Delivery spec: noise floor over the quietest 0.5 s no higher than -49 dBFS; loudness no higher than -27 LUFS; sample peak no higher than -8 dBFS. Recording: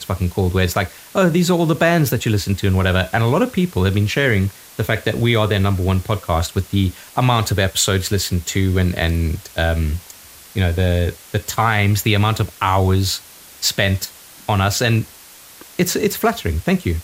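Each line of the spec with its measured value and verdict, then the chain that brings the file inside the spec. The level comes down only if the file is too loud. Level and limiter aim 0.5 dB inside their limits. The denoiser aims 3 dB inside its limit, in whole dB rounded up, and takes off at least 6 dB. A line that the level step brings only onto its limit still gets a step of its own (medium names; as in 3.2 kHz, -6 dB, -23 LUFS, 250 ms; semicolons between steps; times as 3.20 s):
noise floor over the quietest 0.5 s -42 dBFS: fail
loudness -18.5 LUFS: fail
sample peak -2.0 dBFS: fail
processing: trim -9 dB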